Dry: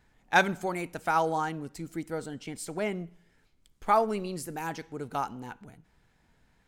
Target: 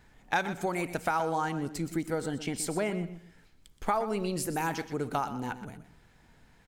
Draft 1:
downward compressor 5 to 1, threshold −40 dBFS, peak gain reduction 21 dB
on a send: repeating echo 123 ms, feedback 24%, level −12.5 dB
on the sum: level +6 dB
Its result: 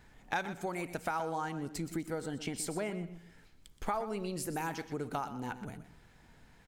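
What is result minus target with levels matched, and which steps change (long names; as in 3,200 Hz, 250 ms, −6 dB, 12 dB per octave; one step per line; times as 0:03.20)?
downward compressor: peak gain reduction +6 dB
change: downward compressor 5 to 1, threshold −32.5 dBFS, peak gain reduction 15 dB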